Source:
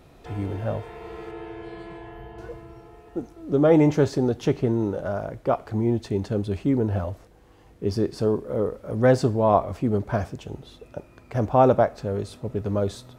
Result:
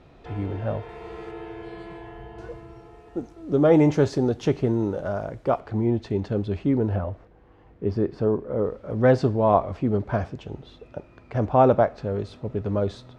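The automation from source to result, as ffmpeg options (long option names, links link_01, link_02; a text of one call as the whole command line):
ffmpeg -i in.wav -af "asetnsamples=nb_out_samples=441:pad=0,asendcmd='0.89 lowpass f 8100;5.6 lowpass f 4100;6.96 lowpass f 2200;8.64 lowpass f 4100',lowpass=4100" out.wav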